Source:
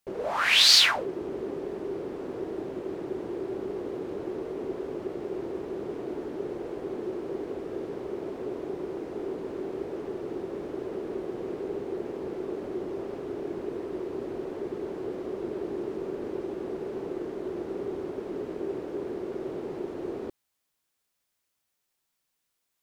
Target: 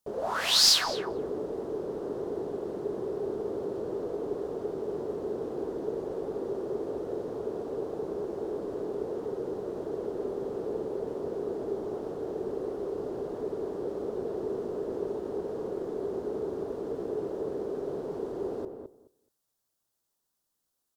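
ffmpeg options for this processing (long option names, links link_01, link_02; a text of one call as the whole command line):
ffmpeg -i in.wav -filter_complex "[0:a]equalizer=frequency=2100:width_type=o:width=1:gain=-12.5,aeval=exprs='clip(val(0),-1,0.2)':channel_layout=same,asetrate=48000,aresample=44100,asplit=2[link_01][link_02];[link_02]adelay=212,lowpass=frequency=1300:poles=1,volume=-6.5dB,asplit=2[link_03][link_04];[link_04]adelay=212,lowpass=frequency=1300:poles=1,volume=0.17,asplit=2[link_05][link_06];[link_06]adelay=212,lowpass=frequency=1300:poles=1,volume=0.17[link_07];[link_03][link_05][link_07]amix=inputs=3:normalize=0[link_08];[link_01][link_08]amix=inputs=2:normalize=0" out.wav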